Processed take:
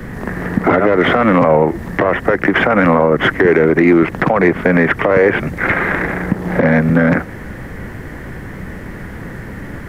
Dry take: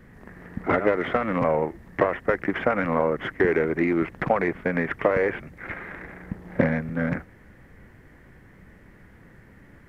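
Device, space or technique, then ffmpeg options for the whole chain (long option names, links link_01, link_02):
mastering chain: -filter_complex "[0:a]equalizer=frequency=2300:width_type=o:width=0.77:gain=-2.5,acrossover=split=96|230[link_01][link_02][link_03];[link_01]acompressor=threshold=-52dB:ratio=4[link_04];[link_02]acompressor=threshold=-33dB:ratio=4[link_05];[link_03]acompressor=threshold=-24dB:ratio=4[link_06];[link_04][link_05][link_06]amix=inputs=3:normalize=0,acompressor=threshold=-32dB:ratio=2,alimiter=level_in=23.5dB:limit=-1dB:release=50:level=0:latency=1,volume=-1dB"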